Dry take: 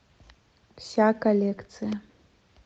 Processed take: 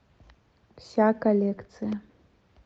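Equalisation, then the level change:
high-shelf EQ 2,600 Hz −10 dB
0.0 dB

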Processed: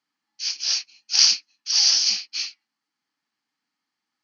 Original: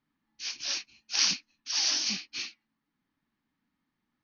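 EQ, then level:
loudspeaker in its box 110–7,200 Hz, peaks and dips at 120 Hz +7 dB, 310 Hz +4 dB, 470 Hz +5 dB, 780 Hz +7 dB, 1,300 Hz +3 dB, 4,700 Hz +5 dB
spectral tilt +4.5 dB per octave
notch filter 3,700 Hz, Q 15
−3.0 dB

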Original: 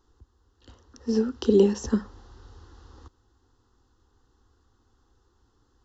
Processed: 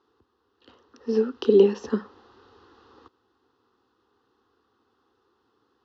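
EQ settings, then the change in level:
loudspeaker in its box 220–4,600 Hz, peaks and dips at 430 Hz +5 dB, 1,200 Hz +4 dB, 2,500 Hz +6 dB
0.0 dB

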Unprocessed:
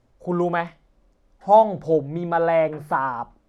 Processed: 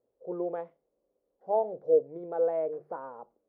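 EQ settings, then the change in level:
resonant band-pass 470 Hz, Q 5
−1.5 dB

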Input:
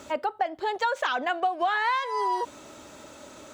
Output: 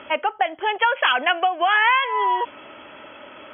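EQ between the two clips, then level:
linear-phase brick-wall low-pass 3,400 Hz
spectral tilt +3 dB per octave
dynamic equaliser 2,500 Hz, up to +7 dB, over −47 dBFS, Q 3.5
+6.5 dB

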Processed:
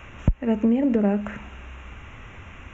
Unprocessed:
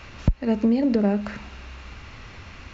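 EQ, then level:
Butterworth band-reject 4,600 Hz, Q 1.3
0.0 dB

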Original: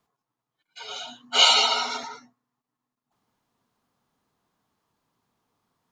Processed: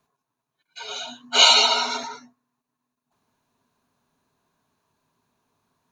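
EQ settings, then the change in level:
EQ curve with evenly spaced ripples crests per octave 1.5, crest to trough 6 dB
+2.5 dB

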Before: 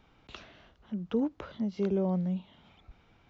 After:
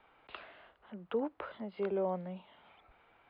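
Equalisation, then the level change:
linear-phase brick-wall low-pass 5,100 Hz
three-way crossover with the lows and the highs turned down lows −18 dB, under 430 Hz, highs −22 dB, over 2,900 Hz
+3.0 dB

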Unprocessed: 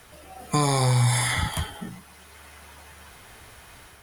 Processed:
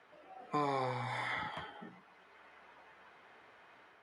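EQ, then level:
band-pass filter 300–2,200 Hz
−8.5 dB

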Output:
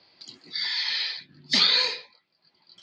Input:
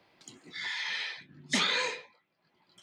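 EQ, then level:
low-pass with resonance 4,600 Hz, resonance Q 9.9
0.0 dB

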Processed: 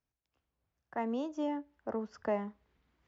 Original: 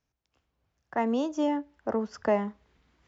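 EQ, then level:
high-shelf EQ 6,100 Hz −9 dB
−7.5 dB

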